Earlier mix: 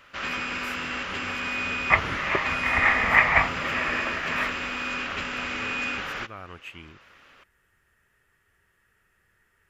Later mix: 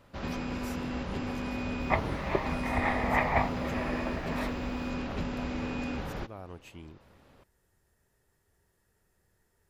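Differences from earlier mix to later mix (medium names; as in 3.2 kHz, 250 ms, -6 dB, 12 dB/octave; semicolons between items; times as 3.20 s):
first sound: add tone controls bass +10 dB, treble -12 dB; master: add high-order bell 1.9 kHz -13 dB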